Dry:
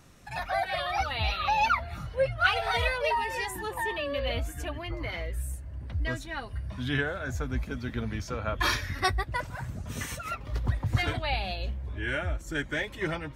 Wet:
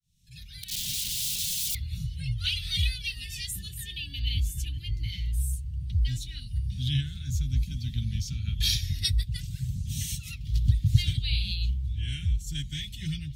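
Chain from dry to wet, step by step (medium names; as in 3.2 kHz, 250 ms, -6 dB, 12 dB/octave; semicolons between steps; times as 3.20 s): fade-in on the opening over 1.10 s; 0.63–1.75 s: integer overflow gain 30 dB; Chebyshev band-stop 160–3300 Hz, order 3; trim +6.5 dB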